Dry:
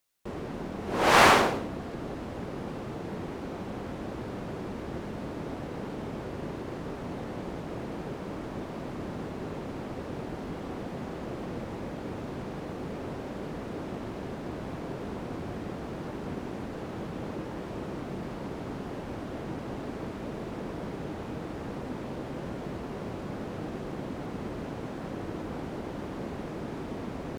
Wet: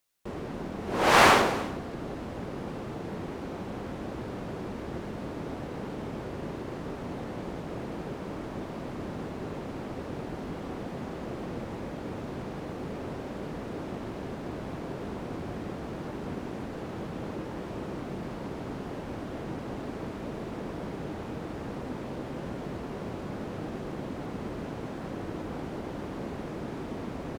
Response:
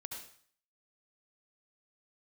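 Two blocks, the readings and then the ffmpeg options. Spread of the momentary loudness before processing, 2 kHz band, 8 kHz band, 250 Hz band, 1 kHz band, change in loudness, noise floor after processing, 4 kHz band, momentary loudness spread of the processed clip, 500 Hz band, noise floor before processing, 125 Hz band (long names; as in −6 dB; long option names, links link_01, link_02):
1 LU, 0.0 dB, 0.0 dB, 0.0 dB, 0.0 dB, 0.0 dB, −39 dBFS, 0.0 dB, 1 LU, 0.0 dB, −39 dBFS, 0.0 dB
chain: -af "aecho=1:1:291:0.119"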